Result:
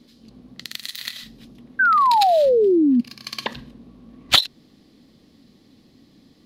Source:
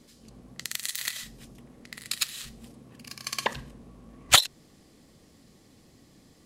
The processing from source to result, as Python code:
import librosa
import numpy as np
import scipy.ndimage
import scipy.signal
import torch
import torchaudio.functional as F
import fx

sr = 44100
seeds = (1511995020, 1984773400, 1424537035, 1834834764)

y = fx.graphic_eq_10(x, sr, hz=(250, 4000, 8000), db=(9, 9, -10))
y = fx.spec_paint(y, sr, seeds[0], shape='fall', start_s=1.79, length_s=1.22, low_hz=230.0, high_hz=1600.0, level_db=-14.0)
y = F.gain(torch.from_numpy(y), -1.5).numpy()